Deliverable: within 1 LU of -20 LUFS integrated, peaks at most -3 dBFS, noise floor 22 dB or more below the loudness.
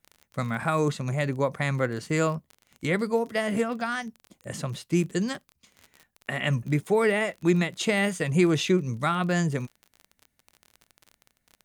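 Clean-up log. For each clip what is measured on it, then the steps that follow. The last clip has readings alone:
ticks 33/s; loudness -26.5 LUFS; peak -10.5 dBFS; loudness target -20.0 LUFS
-> de-click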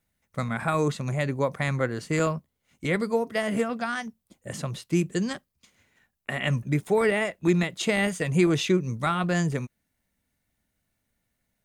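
ticks 0/s; loudness -26.5 LUFS; peak -10.5 dBFS; loudness target -20.0 LUFS
-> gain +6.5 dB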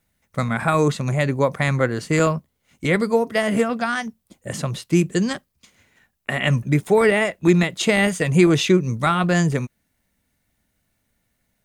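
loudness -20.0 LUFS; peak -4.0 dBFS; noise floor -72 dBFS

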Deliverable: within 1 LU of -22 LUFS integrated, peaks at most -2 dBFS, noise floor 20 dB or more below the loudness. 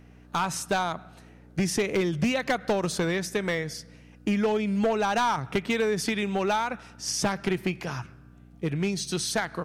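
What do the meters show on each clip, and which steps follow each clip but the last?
clipped 1.4%; flat tops at -19.0 dBFS; hum 60 Hz; harmonics up to 300 Hz; hum level -51 dBFS; loudness -27.5 LUFS; peak -19.0 dBFS; loudness target -22.0 LUFS
-> clip repair -19 dBFS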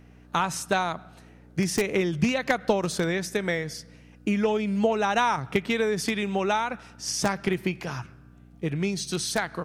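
clipped 0.0%; hum 60 Hz; harmonics up to 300 Hz; hum level -51 dBFS
-> de-hum 60 Hz, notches 5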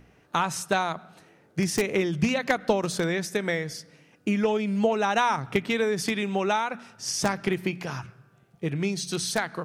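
hum none; loudness -27.0 LUFS; peak -9.5 dBFS; loudness target -22.0 LUFS
-> gain +5 dB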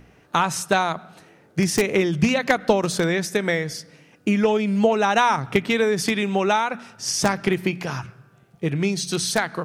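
loudness -22.0 LUFS; peak -4.5 dBFS; noise floor -55 dBFS

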